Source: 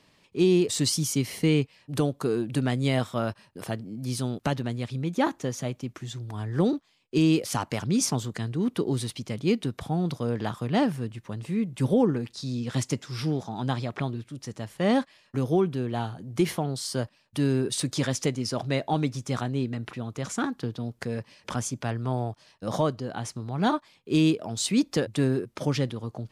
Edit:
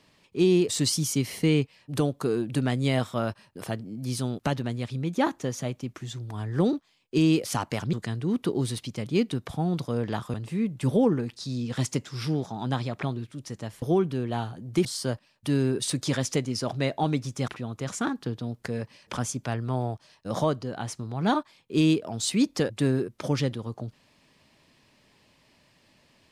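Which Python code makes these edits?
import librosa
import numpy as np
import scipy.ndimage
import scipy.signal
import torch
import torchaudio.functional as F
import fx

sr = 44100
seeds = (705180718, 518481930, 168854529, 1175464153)

y = fx.edit(x, sr, fx.cut(start_s=7.93, length_s=0.32),
    fx.cut(start_s=10.66, length_s=0.65),
    fx.cut(start_s=14.79, length_s=0.65),
    fx.cut(start_s=16.47, length_s=0.28),
    fx.cut(start_s=19.38, length_s=0.47), tone=tone)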